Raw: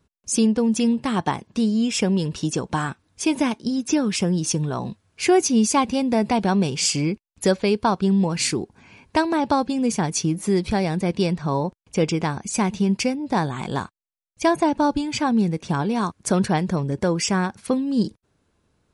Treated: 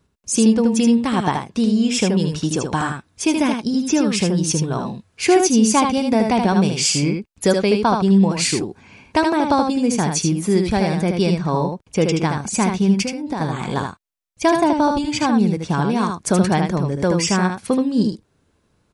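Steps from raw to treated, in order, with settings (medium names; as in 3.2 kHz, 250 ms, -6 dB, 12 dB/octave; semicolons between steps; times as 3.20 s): 13.01–13.41 s: compression 6:1, threshold -25 dBFS, peak gain reduction 9 dB; delay 77 ms -5 dB; trim +2.5 dB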